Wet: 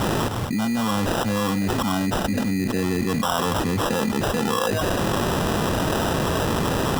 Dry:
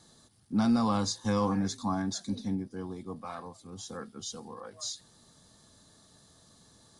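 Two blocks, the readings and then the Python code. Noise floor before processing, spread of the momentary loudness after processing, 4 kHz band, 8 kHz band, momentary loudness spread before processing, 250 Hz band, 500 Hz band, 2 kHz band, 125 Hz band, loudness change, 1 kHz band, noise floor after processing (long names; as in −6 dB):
−61 dBFS, 1 LU, +12.5 dB, +9.5 dB, 17 LU, +9.0 dB, +15.0 dB, +20.0 dB, +13.5 dB, +9.5 dB, +13.0 dB, −25 dBFS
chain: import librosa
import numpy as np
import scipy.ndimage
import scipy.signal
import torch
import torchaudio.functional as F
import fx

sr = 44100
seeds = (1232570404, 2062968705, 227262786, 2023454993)

y = fx.sample_hold(x, sr, seeds[0], rate_hz=2200.0, jitter_pct=0)
y = fx.env_flatten(y, sr, amount_pct=100)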